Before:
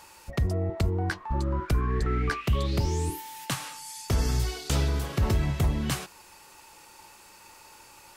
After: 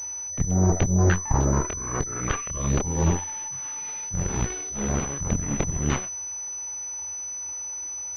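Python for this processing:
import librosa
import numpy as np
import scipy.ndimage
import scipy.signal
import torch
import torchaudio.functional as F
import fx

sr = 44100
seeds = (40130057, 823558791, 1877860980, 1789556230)

y = fx.peak_eq(x, sr, hz=89.0, db=15.0, octaves=0.29)
y = fx.auto_swell(y, sr, attack_ms=273.0)
y = fx.chorus_voices(y, sr, voices=6, hz=0.87, base_ms=26, depth_ms=4.5, mix_pct=40)
y = fx.cheby_harmonics(y, sr, harmonics=(6,), levels_db=(-7,), full_scale_db=-14.0)
y = fx.pwm(y, sr, carrier_hz=6000.0)
y = y * 10.0 ** (2.0 / 20.0)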